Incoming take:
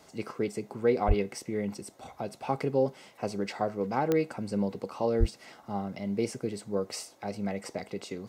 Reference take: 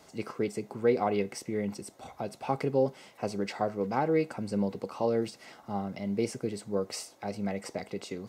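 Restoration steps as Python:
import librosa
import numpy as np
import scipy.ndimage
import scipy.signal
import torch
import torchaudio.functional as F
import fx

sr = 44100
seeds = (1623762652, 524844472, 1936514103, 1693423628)

y = fx.fix_declick_ar(x, sr, threshold=10.0)
y = fx.fix_deplosive(y, sr, at_s=(1.07, 5.19))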